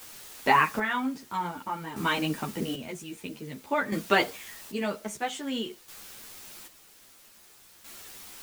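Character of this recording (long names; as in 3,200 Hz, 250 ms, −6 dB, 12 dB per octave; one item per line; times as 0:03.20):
a quantiser's noise floor 8 bits, dither triangular
chopped level 0.51 Hz, depth 65%, duty 40%
a shimmering, thickened sound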